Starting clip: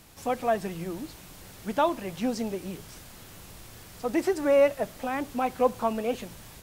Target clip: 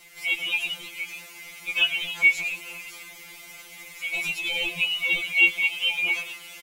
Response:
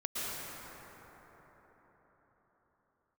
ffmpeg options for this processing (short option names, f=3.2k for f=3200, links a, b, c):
-filter_complex "[0:a]afftfilt=real='real(if(lt(b,920),b+92*(1-2*mod(floor(b/92),2)),b),0)':imag='imag(if(lt(b,920),b+92*(1-2*mod(floor(b/92),2)),b),0)':win_size=2048:overlap=0.75,asplit=7[a][b][c][d][e][f][g];[b]adelay=108,afreqshift=130,volume=-12dB[h];[c]adelay=216,afreqshift=260,volume=-16.7dB[i];[d]adelay=324,afreqshift=390,volume=-21.5dB[j];[e]adelay=432,afreqshift=520,volume=-26.2dB[k];[f]adelay=540,afreqshift=650,volume=-30.9dB[l];[g]adelay=648,afreqshift=780,volume=-35.7dB[m];[a][h][i][j][k][l][m]amix=inputs=7:normalize=0,afftfilt=real='re*2.83*eq(mod(b,8),0)':imag='im*2.83*eq(mod(b,8),0)':win_size=2048:overlap=0.75,volume=5.5dB"